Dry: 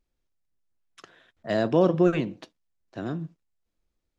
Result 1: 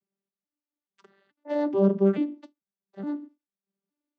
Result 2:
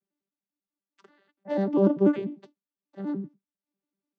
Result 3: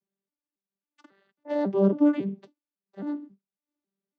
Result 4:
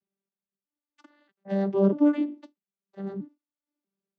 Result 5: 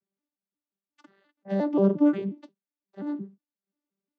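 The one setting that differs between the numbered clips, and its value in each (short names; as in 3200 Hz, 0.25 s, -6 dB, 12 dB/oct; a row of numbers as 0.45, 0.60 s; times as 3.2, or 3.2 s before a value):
arpeggiated vocoder, a note every: 432, 98, 274, 639, 177 ms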